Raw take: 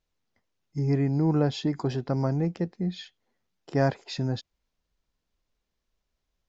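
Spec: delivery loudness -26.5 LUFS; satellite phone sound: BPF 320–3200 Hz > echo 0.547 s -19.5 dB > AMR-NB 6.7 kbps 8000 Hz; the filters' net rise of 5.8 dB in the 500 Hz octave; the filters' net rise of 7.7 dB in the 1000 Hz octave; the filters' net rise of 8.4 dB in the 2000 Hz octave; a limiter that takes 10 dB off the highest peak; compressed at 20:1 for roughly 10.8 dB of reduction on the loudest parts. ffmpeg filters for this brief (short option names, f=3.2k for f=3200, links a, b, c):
-af "equalizer=f=500:t=o:g=6,equalizer=f=1k:t=o:g=6.5,equalizer=f=2k:t=o:g=8.5,acompressor=threshold=-23dB:ratio=20,alimiter=limit=-22dB:level=0:latency=1,highpass=320,lowpass=3.2k,aecho=1:1:547:0.106,volume=12dB" -ar 8000 -c:a libopencore_amrnb -b:a 6700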